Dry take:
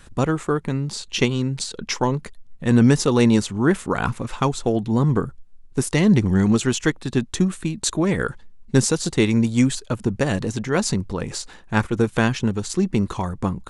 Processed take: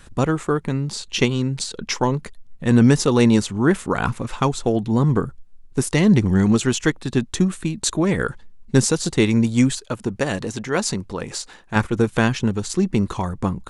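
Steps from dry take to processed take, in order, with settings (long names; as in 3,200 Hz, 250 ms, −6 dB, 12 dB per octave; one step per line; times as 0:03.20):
0:09.73–0:11.76: low-shelf EQ 210 Hz −8 dB
level +1 dB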